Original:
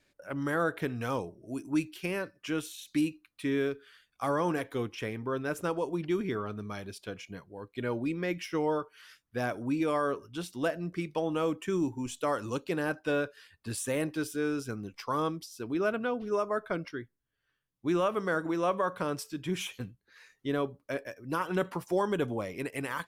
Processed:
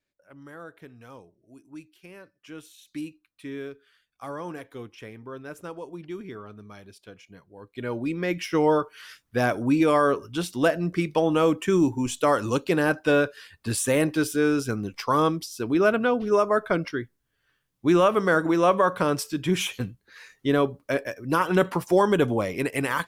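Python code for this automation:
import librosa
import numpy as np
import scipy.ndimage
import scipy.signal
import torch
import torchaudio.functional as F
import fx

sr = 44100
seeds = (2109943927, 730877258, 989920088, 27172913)

y = fx.gain(x, sr, db=fx.line((2.04, -13.5), (2.89, -6.0), (7.31, -6.0), (7.83, 1.5), (8.67, 9.0)))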